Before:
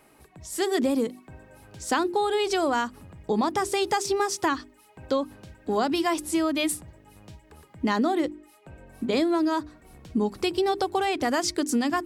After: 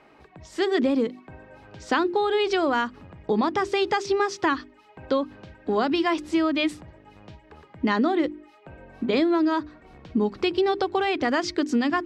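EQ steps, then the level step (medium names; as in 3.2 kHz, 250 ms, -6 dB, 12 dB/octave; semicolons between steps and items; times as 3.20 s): bass shelf 230 Hz -7.5 dB; dynamic bell 770 Hz, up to -5 dB, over -40 dBFS, Q 1.2; distance through air 200 m; +6.0 dB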